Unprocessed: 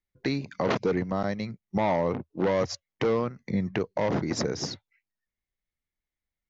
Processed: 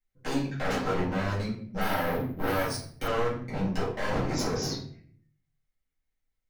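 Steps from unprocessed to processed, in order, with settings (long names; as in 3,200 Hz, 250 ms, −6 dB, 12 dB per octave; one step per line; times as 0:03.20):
dynamic equaliser 1,900 Hz, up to −3 dB, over −46 dBFS
wave folding −25 dBFS
rectangular room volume 69 cubic metres, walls mixed, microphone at 2.1 metres
0:01.81–0:03.08: bad sample-rate conversion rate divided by 3×, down filtered, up hold
level −8 dB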